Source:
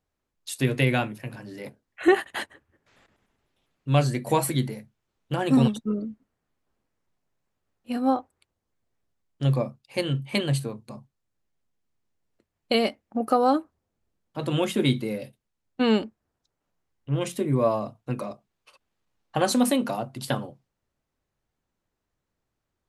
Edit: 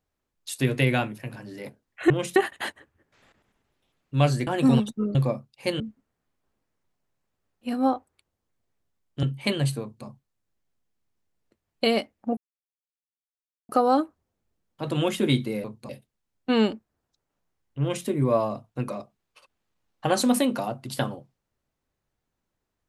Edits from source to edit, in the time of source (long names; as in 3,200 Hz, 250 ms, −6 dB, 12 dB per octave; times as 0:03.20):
0:04.21–0:05.35: remove
0:09.46–0:10.11: move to 0:06.03
0:10.69–0:10.94: duplicate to 0:15.20
0:13.25: splice in silence 1.32 s
0:17.12–0:17.38: duplicate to 0:02.10